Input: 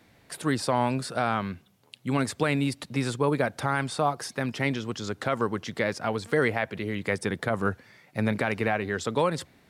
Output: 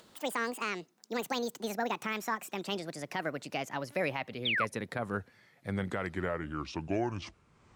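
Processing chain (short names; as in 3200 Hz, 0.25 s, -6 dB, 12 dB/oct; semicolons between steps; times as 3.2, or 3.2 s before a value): speed glide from 196% -> 54%; painted sound fall, 4.45–4.65, 990–3900 Hz -22 dBFS; upward compressor, threshold -44 dBFS; gain -8 dB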